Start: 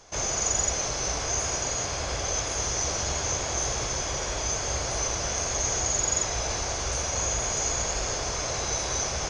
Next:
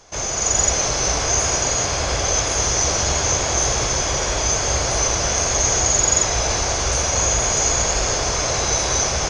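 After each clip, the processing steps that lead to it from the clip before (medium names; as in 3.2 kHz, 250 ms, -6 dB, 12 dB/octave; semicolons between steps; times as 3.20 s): level rider gain up to 5.5 dB; trim +3.5 dB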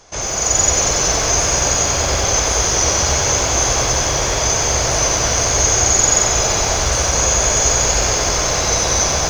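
bit-crushed delay 93 ms, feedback 80%, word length 7-bit, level -7 dB; trim +2 dB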